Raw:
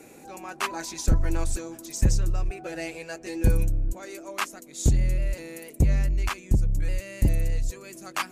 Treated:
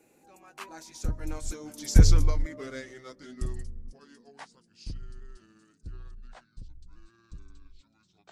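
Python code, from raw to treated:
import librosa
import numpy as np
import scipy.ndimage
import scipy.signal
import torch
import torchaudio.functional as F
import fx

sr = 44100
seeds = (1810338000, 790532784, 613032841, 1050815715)

y = fx.pitch_glide(x, sr, semitones=-10.0, runs='starting unshifted')
y = fx.doppler_pass(y, sr, speed_mps=11, closest_m=1.9, pass_at_s=2.12)
y = F.gain(torch.from_numpy(y), 7.0).numpy()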